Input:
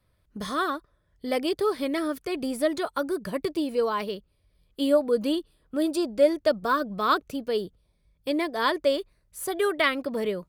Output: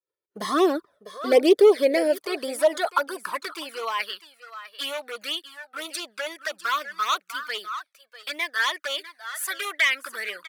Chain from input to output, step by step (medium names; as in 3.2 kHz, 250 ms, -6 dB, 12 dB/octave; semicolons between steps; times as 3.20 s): expander -52 dBFS; in parallel at -0.5 dB: peak limiter -17.5 dBFS, peak gain reduction 8 dB; on the sum: overload inside the chain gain 15.5 dB; delay 650 ms -14.5 dB; touch-sensitive flanger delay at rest 2.2 ms, full sweep at -16.5 dBFS; high-pass sweep 390 Hz -> 1.5 kHz, 1.26–4.19 s; trim +2.5 dB